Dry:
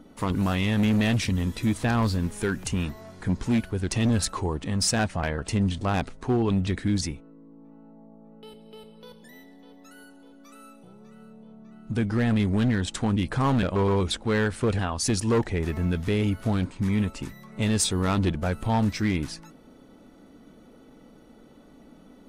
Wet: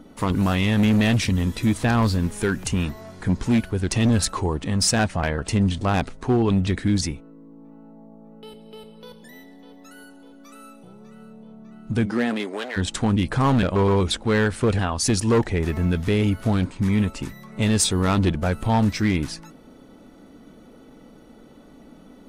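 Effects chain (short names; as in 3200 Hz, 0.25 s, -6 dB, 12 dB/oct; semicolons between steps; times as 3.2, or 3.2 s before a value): 12.05–12.76 HPF 160 Hz -> 530 Hz 24 dB/oct; gain +4 dB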